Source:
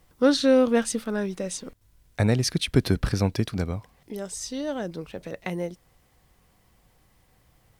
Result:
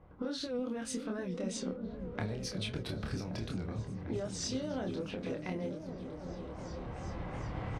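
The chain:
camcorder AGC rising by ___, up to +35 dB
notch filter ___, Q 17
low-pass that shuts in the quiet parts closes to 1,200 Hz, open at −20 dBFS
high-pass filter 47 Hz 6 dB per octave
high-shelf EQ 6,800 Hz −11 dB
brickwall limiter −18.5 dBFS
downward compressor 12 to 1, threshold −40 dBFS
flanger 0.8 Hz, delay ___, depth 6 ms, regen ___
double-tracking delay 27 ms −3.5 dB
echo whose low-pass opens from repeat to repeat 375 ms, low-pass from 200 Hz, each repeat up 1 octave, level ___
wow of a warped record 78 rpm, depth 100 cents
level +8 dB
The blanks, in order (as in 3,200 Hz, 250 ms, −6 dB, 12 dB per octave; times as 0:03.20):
10 dB per second, 1,800 Hz, 8.6 ms, −68%, −3 dB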